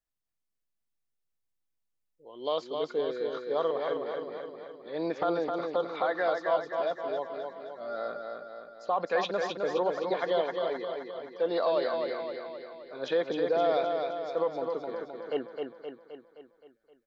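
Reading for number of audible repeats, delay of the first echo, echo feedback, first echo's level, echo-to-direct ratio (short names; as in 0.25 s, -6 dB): 7, 0.261 s, 56%, -4.5 dB, -3.0 dB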